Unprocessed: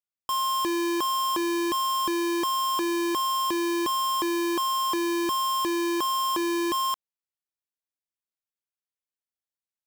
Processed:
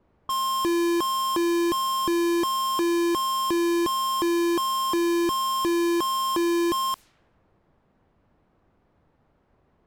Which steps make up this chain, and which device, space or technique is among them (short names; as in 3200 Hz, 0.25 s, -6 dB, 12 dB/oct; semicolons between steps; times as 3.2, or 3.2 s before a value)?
cassette deck with a dynamic noise filter (white noise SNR 29 dB; low-pass opened by the level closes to 760 Hz, open at -28.5 dBFS); low shelf 280 Hz +10 dB